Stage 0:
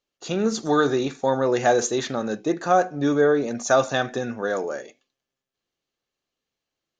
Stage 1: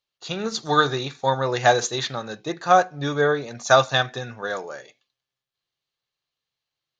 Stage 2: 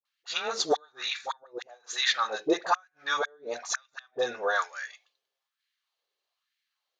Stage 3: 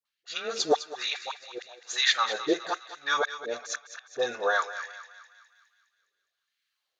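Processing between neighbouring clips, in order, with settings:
graphic EQ 125/250/1000/2000/4000 Hz +10/-6/+6/+4/+11 dB; upward expander 1.5:1, over -27 dBFS
flipped gate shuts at -12 dBFS, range -40 dB; dispersion highs, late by 54 ms, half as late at 660 Hz; LFO high-pass sine 1.1 Hz 410–1900 Hz
rotary speaker horn 0.85 Hz; thinning echo 0.206 s, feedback 58%, high-pass 950 Hz, level -11 dB; gain +2.5 dB

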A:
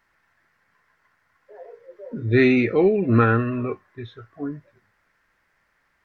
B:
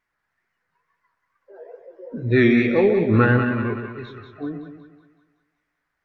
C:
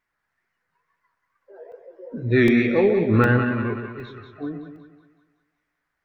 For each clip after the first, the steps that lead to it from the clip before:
spectral noise reduction 11 dB; wow and flutter 140 cents; split-band echo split 840 Hz, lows 0.123 s, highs 0.187 s, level -7 dB
crackling interface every 0.76 s, samples 64, zero, from 0.96; gain -1 dB

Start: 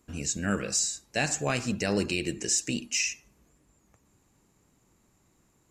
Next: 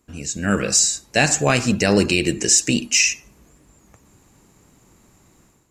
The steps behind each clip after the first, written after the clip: AGC gain up to 11 dB; gain +1.5 dB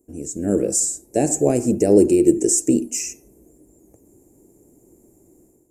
EQ curve 190 Hz 0 dB, 340 Hz +14 dB, 730 Hz +1 dB, 1200 Hz -18 dB, 2300 Hz -15 dB, 3600 Hz -24 dB, 8800 Hz +8 dB; gain -4.5 dB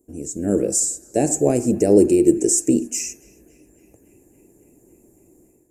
narrowing echo 0.278 s, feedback 80%, band-pass 1900 Hz, level -22 dB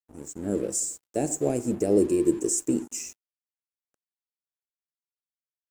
crossover distortion -39 dBFS; gain -7.5 dB

